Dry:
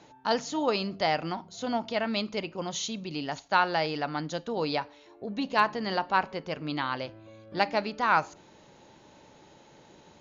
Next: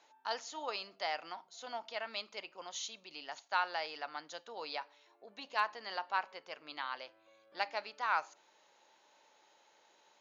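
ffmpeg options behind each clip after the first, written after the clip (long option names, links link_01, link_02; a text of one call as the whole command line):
ffmpeg -i in.wav -af "highpass=730,volume=-8dB" out.wav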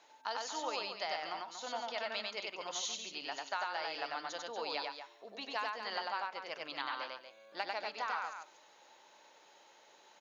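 ffmpeg -i in.wav -filter_complex "[0:a]acompressor=threshold=-38dB:ratio=6,asplit=2[link_01][link_02];[link_02]aecho=0:1:96.21|236.2:0.794|0.355[link_03];[link_01][link_03]amix=inputs=2:normalize=0,volume=3dB" out.wav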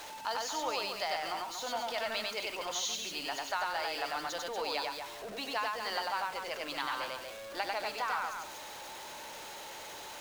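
ffmpeg -i in.wav -af "aeval=exprs='val(0)+0.5*0.00708*sgn(val(0))':channel_layout=same,volume=2dB" out.wav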